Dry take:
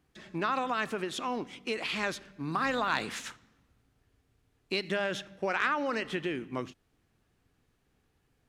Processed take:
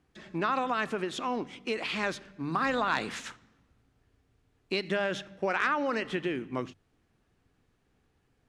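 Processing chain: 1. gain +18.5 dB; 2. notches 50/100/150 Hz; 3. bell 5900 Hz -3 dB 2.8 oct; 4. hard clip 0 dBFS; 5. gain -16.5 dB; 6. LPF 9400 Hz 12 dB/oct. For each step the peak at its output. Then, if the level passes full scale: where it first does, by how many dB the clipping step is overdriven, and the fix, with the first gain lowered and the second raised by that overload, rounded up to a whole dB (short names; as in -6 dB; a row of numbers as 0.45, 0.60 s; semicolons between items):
+4.0, +4.0, +3.0, 0.0, -16.5, -16.0 dBFS; step 1, 3.0 dB; step 1 +15.5 dB, step 5 -13.5 dB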